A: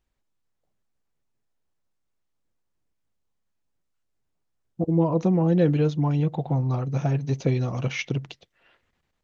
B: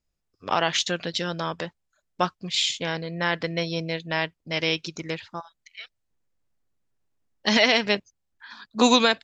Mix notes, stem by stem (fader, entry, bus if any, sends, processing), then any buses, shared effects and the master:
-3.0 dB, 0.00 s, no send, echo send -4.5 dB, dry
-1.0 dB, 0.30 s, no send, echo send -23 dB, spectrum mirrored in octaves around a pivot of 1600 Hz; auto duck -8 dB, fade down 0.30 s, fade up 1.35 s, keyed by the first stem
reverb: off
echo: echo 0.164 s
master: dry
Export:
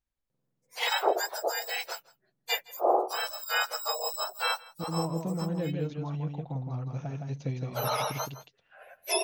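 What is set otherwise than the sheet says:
stem A -3.0 dB -> -11.5 dB; master: extra bell 360 Hz -5.5 dB 0.36 oct

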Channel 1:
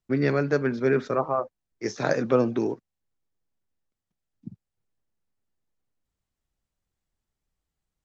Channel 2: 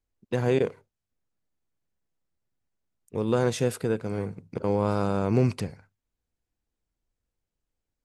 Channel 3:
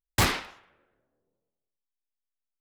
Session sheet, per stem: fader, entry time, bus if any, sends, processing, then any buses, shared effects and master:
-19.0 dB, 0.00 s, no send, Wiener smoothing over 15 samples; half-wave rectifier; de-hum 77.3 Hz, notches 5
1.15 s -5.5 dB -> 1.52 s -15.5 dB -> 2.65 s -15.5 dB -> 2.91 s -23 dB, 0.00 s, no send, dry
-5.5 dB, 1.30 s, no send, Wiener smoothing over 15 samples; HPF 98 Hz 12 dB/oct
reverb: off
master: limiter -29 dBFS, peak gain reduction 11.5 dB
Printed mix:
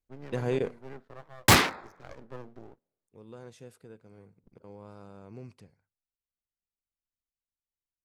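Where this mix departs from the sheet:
stem 1: missing de-hum 77.3 Hz, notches 5; stem 3 -5.5 dB -> +5.5 dB; master: missing limiter -29 dBFS, peak gain reduction 11.5 dB

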